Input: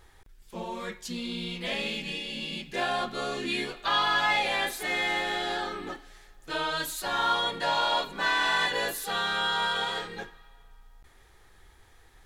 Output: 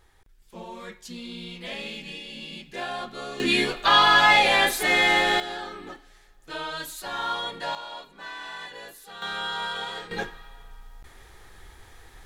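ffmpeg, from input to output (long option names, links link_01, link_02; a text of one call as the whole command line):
ffmpeg -i in.wav -af "asetnsamples=nb_out_samples=441:pad=0,asendcmd='3.4 volume volume 8.5dB;5.4 volume volume -3dB;7.75 volume volume -12.5dB;9.22 volume volume -3dB;10.11 volume volume 8dB',volume=-3.5dB" out.wav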